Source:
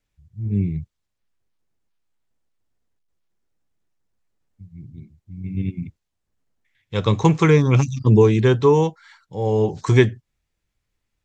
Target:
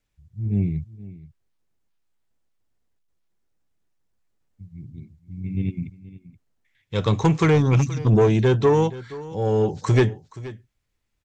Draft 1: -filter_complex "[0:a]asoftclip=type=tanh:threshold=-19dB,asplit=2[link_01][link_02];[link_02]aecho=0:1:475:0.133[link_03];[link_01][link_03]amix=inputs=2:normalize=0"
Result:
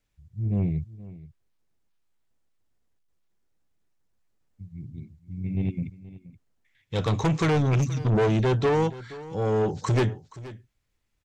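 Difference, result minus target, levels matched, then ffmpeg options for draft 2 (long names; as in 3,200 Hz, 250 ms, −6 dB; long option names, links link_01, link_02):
soft clipping: distortion +7 dB
-filter_complex "[0:a]asoftclip=type=tanh:threshold=-10.5dB,asplit=2[link_01][link_02];[link_02]aecho=0:1:475:0.133[link_03];[link_01][link_03]amix=inputs=2:normalize=0"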